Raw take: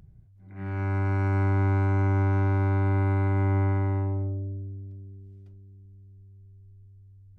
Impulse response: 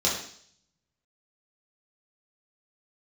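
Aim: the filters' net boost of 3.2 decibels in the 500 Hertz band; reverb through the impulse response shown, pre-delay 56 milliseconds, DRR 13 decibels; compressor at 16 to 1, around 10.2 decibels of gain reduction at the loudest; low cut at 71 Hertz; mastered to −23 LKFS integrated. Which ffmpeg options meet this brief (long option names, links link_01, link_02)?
-filter_complex "[0:a]highpass=71,equalizer=frequency=500:width_type=o:gain=4.5,acompressor=threshold=-30dB:ratio=16,asplit=2[link_01][link_02];[1:a]atrim=start_sample=2205,adelay=56[link_03];[link_02][link_03]afir=irnorm=-1:irlink=0,volume=-24.5dB[link_04];[link_01][link_04]amix=inputs=2:normalize=0,volume=10.5dB"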